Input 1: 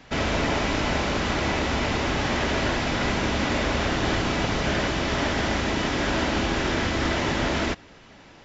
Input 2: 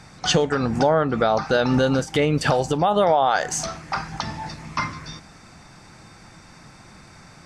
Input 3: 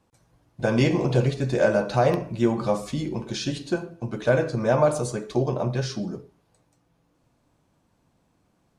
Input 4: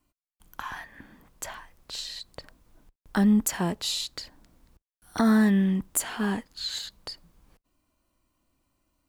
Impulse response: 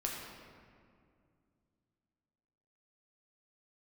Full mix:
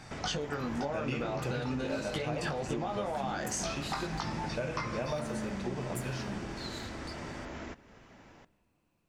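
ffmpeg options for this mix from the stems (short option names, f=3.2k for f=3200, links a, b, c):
-filter_complex "[0:a]equalizer=f=3.8k:t=o:w=1.1:g=-7.5,acompressor=threshold=-34dB:ratio=5,volume=-7dB,asplit=2[a][b];[b]volume=-18.5dB[c];[1:a]acompressor=threshold=-24dB:ratio=6,flanger=delay=19:depth=2.6:speed=0.45,volume=-1dB[d];[2:a]equalizer=f=2.6k:t=o:w=0.33:g=13,adelay=300,volume=-14.5dB,asplit=2[e][f];[f]volume=-8.5dB[g];[3:a]acompressor=threshold=-34dB:ratio=2,volume=-13dB,asplit=2[h][i];[i]volume=-6.5dB[j];[4:a]atrim=start_sample=2205[k];[c][g][j]amix=inputs=3:normalize=0[l];[l][k]afir=irnorm=-1:irlink=0[m];[a][d][e][h][m]amix=inputs=5:normalize=0,acompressor=threshold=-31dB:ratio=4"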